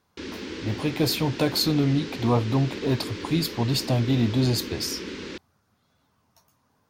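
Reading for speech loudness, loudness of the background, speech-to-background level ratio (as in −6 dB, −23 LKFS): −25.0 LKFS, −35.5 LKFS, 10.5 dB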